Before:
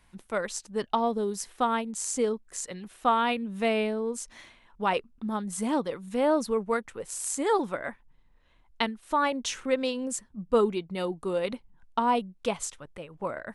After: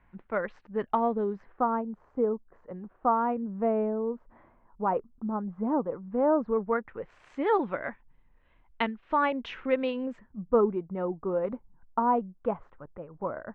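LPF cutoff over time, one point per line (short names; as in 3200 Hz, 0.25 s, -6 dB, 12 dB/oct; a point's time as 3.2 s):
LPF 24 dB/oct
1.25 s 2100 Hz
1.74 s 1200 Hz
6.07 s 1200 Hz
7.45 s 2700 Hz
10.01 s 2700 Hz
10.55 s 1400 Hz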